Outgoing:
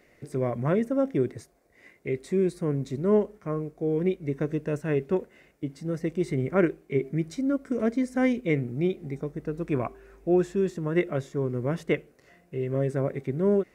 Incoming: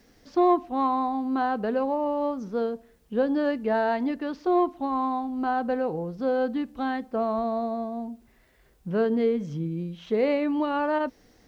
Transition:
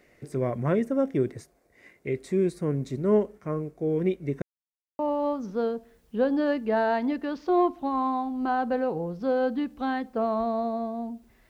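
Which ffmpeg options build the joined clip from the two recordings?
-filter_complex "[0:a]apad=whole_dur=11.49,atrim=end=11.49,asplit=2[a][b];[a]atrim=end=4.42,asetpts=PTS-STARTPTS,afade=t=out:st=4.416:d=0.004:c=hsin[c];[b]atrim=start=4.42:end=4.99,asetpts=PTS-STARTPTS,volume=0[d];[1:a]atrim=start=1.97:end=8.47,asetpts=PTS-STARTPTS,afade=t=in:d=0.004:c=hsin[e];[c][d][e]concat=n=3:v=0:a=1"

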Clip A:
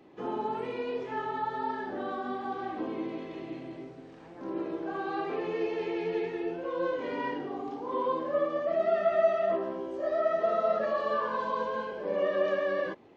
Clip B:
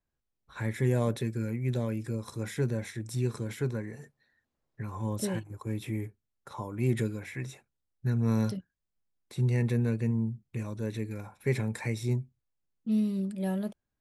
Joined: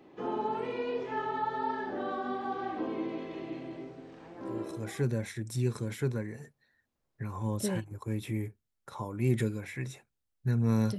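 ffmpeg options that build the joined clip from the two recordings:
-filter_complex "[0:a]apad=whole_dur=10.98,atrim=end=10.98,atrim=end=5.1,asetpts=PTS-STARTPTS[a];[1:a]atrim=start=1.95:end=8.57,asetpts=PTS-STARTPTS[b];[a][b]acrossfade=d=0.74:c1=tri:c2=tri"

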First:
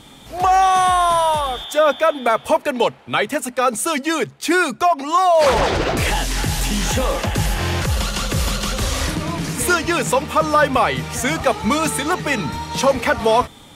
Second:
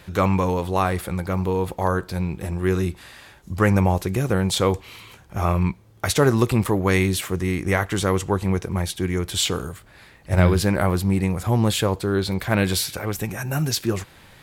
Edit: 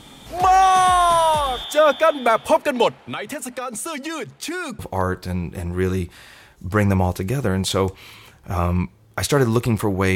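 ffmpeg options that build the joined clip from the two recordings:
-filter_complex "[0:a]asettb=1/sr,asplit=3[a][b][c];[a]atrim=end=2.984[d];[b]atrim=start=2.98:end=4.79,asetpts=PTS-STARTPTS,afade=t=in:d=0.004:c=qsin,afade=t=out:st=1.806:d=0.004:c=qsin,acompressor=threshold=-25dB:ratio=6:attack=3.2:release=140:knee=1:detection=peak[e];[c]atrim=start=4.786[f];[d][e]acrossfade=d=0.004:c1=hsin:c2=qsin[g];[g][f]acrossfade=d=0.004:c1=qsin:c2=hsin,apad=whole_dur=10.15,atrim=end=10.15,atrim=end=4.792[h];[1:a]atrim=start=1.648:end=7.01[i];[h][i]acrossfade=d=0.004:c1=hsin:c2=hsin"

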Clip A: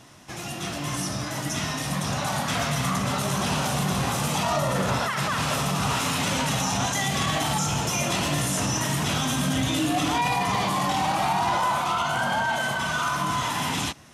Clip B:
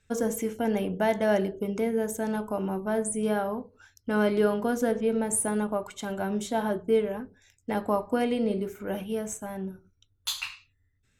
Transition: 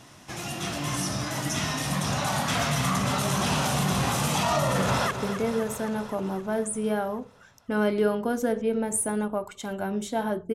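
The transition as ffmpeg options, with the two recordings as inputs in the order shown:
-filter_complex "[0:a]apad=whole_dur=10.54,atrim=end=10.54,atrim=end=5.112[a];[1:a]atrim=start=1.498:end=6.93[b];[a][b]acrossfade=d=0.004:c1=hsin:c2=hsin,asplit=2[c][d];[d]afade=t=in:st=4.66:d=0.01,afade=t=out:st=5.11:d=0.01,aecho=0:1:260|520|780|1040|1300|1560|1820|2080|2340|2600:0.334965|0.234476|0.164133|0.114893|0.0804252|0.0562976|0.0394083|0.0275858|0.0193101|0.0135171[e];[c][e]amix=inputs=2:normalize=0"

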